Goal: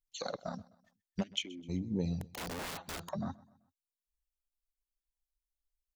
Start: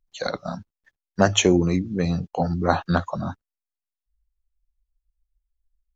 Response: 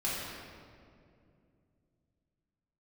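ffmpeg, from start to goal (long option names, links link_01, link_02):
-filter_complex "[0:a]afwtdn=0.0355,acrossover=split=3800[link_01][link_02];[link_01]alimiter=limit=-12dB:level=0:latency=1:release=256[link_03];[link_03][link_02]amix=inputs=2:normalize=0,acompressor=threshold=-32dB:ratio=3,flanger=delay=0.1:depth=6.1:regen=47:speed=0.52:shape=sinusoidal,asplit=3[link_04][link_05][link_06];[link_04]afade=type=out:start_time=1.22:duration=0.02[link_07];[link_05]asplit=3[link_08][link_09][link_10];[link_08]bandpass=frequency=270:width_type=q:width=8,volume=0dB[link_11];[link_09]bandpass=frequency=2290:width_type=q:width=8,volume=-6dB[link_12];[link_10]bandpass=frequency=3010:width_type=q:width=8,volume=-9dB[link_13];[link_11][link_12][link_13]amix=inputs=3:normalize=0,afade=type=in:start_time=1.22:duration=0.02,afade=type=out:start_time=1.68:duration=0.02[link_14];[link_06]afade=type=in:start_time=1.68:duration=0.02[link_15];[link_07][link_14][link_15]amix=inputs=3:normalize=0,asplit=2[link_16][link_17];[link_17]aecho=0:1:128|256|384:0.0794|0.035|0.0154[link_18];[link_16][link_18]amix=inputs=2:normalize=0,aexciter=amount=4.3:drive=7.1:freq=2200,asettb=1/sr,asplit=3[link_19][link_20][link_21];[link_19]atrim=end=2.214[link_22];[link_20]atrim=start=2.21:end=3.09,asetpts=PTS-STARTPTS,afade=type=in:duration=0.004:curve=qsin,afade=type=out:start_time=0.876:duration=0.004:curve=qsin,aeval=exprs='(mod(63.1*val(0)+1,2)-1)/63.1':channel_layout=same[link_23];[link_21]atrim=start=3.086[link_24];[link_22][link_23]acrossfade=duration=0.004:curve1=hsin:curve2=qsin[link_25];[link_25][link_24]acrossfade=duration=0.004:curve1=qsin:curve2=hsin"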